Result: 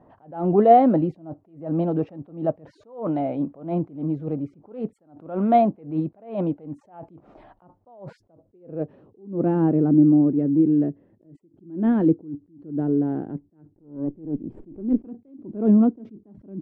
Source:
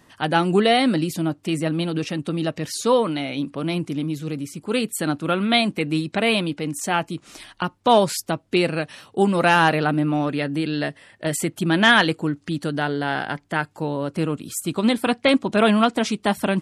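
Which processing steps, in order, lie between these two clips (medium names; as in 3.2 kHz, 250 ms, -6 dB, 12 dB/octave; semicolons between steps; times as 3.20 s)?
13.70–15.05 s: comb filter that takes the minimum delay 0.39 ms; low-pass sweep 700 Hz -> 330 Hz, 8.01–9.33 s; attacks held to a fixed rise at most 140 dB/s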